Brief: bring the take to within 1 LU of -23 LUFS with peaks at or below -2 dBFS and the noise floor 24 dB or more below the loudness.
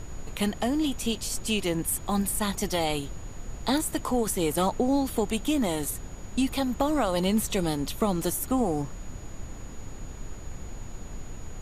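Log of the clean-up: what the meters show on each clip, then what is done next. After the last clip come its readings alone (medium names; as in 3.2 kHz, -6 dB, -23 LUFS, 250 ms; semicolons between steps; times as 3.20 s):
steady tone 6.8 kHz; tone level -52 dBFS; noise floor -40 dBFS; noise floor target -52 dBFS; loudness -27.5 LUFS; peak level -12.5 dBFS; loudness target -23.0 LUFS
-> band-stop 6.8 kHz, Q 30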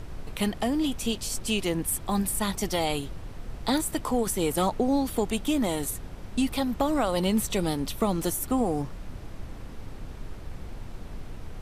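steady tone not found; noise floor -40 dBFS; noise floor target -52 dBFS
-> noise print and reduce 12 dB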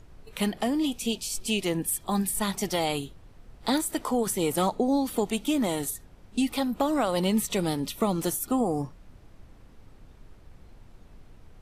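noise floor -52 dBFS; loudness -27.5 LUFS; peak level -13.5 dBFS; loudness target -23.0 LUFS
-> trim +4.5 dB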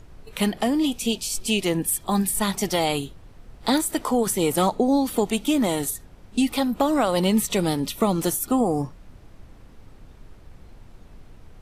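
loudness -23.0 LUFS; peak level -9.0 dBFS; noise floor -48 dBFS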